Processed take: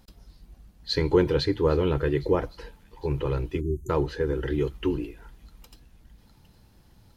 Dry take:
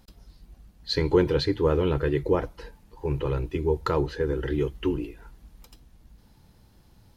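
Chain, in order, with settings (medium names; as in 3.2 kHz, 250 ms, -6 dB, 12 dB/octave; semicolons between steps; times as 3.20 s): feedback echo behind a high-pass 810 ms, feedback 57%, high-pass 3 kHz, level -20 dB; spectral selection erased 3.61–3.90 s, 400–6000 Hz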